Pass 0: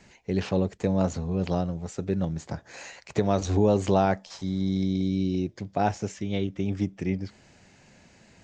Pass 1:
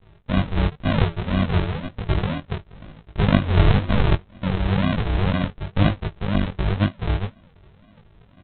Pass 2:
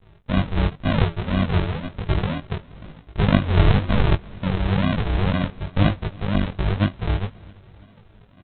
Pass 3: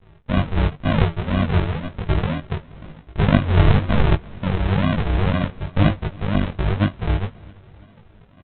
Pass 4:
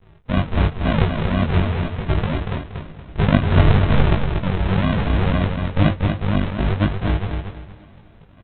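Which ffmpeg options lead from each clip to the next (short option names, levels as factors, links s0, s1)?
-af "aresample=8000,acrusher=samples=25:mix=1:aa=0.000001:lfo=1:lforange=15:lforate=2,aresample=44100,flanger=delay=18.5:depth=3:speed=0.99,volume=2.66"
-af "aecho=1:1:333|666|999|1332:0.0631|0.036|0.0205|0.0117"
-filter_complex "[0:a]lowpass=3600,asplit=2[s0][s1];[s1]adelay=13,volume=0.224[s2];[s0][s2]amix=inputs=2:normalize=0,volume=1.19"
-af "aecho=1:1:236|472|708|944:0.531|0.154|0.0446|0.0129"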